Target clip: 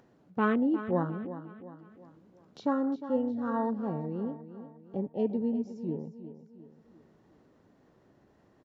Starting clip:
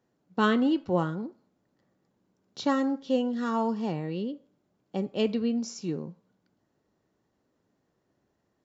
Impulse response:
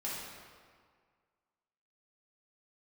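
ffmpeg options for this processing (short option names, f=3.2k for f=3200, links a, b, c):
-af "lowpass=f=2.5k:p=1,afwtdn=0.0224,acompressor=mode=upward:threshold=-37dB:ratio=2.5,aecho=1:1:356|712|1068|1424:0.237|0.107|0.048|0.0216,volume=-2.5dB"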